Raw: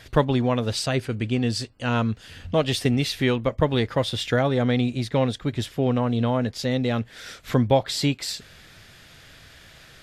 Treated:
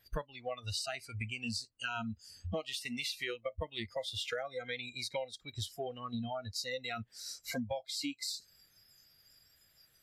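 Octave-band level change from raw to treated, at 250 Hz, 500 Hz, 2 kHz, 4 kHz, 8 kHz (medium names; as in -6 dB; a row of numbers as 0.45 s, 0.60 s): -20.0 dB, -16.5 dB, -9.5 dB, -9.5 dB, -8.0 dB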